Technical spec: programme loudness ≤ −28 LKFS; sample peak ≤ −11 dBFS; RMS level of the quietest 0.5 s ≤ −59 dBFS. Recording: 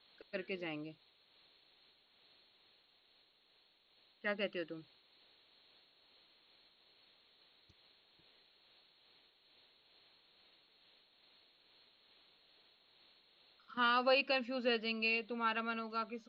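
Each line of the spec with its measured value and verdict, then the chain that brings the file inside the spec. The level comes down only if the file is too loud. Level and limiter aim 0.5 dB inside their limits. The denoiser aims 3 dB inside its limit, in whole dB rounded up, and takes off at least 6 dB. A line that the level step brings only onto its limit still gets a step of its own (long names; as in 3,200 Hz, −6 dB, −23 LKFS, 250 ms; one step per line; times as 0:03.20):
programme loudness −36.5 LKFS: in spec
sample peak −20.5 dBFS: in spec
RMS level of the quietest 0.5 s −72 dBFS: in spec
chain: no processing needed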